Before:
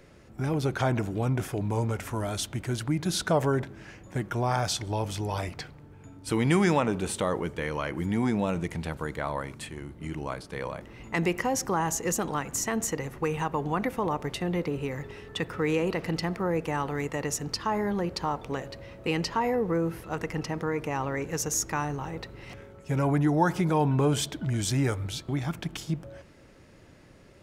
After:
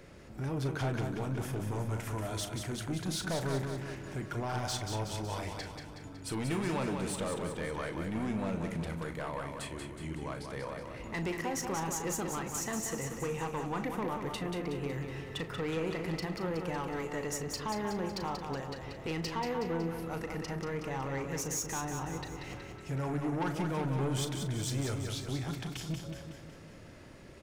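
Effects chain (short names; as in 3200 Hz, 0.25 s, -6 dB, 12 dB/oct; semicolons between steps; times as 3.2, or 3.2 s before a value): in parallel at +3 dB: compressor, threshold -43 dBFS, peak gain reduction 22.5 dB; on the sum: soft clip -23 dBFS, distortion -12 dB; doubler 37 ms -10.5 dB; feedback echo 0.185 s, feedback 55%, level -6 dB; gain -7 dB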